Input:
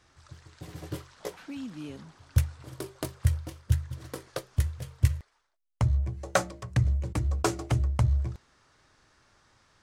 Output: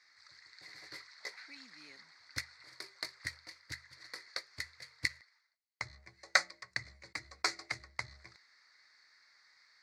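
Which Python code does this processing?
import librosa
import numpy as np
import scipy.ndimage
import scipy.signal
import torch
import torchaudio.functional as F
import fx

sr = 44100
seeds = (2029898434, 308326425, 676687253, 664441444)

y = fx.cheby_harmonics(x, sr, harmonics=(3,), levels_db=(-15,), full_scale_db=-9.0)
y = fx.double_bandpass(y, sr, hz=3000.0, octaves=1.1)
y = y * 10.0 ** (15.0 / 20.0)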